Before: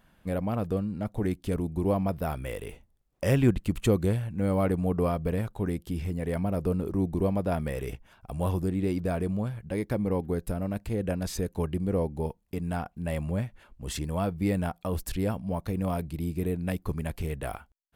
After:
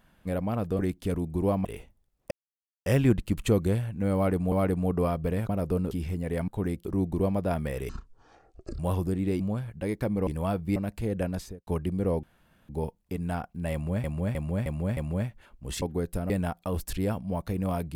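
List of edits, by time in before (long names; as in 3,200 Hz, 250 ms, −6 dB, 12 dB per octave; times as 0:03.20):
0:00.79–0:01.21: remove
0:02.07–0:02.58: remove
0:03.24: splice in silence 0.55 s
0:04.53–0:04.90: repeat, 2 plays
0:05.50–0:05.87: swap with 0:06.44–0:06.86
0:07.90–0:08.35: play speed 50%
0:08.96–0:09.29: remove
0:10.16–0:10.64: swap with 0:14.00–0:14.49
0:11.16–0:11.55: fade out and dull
0:12.11: splice in room tone 0.46 s
0:13.15–0:13.46: repeat, 5 plays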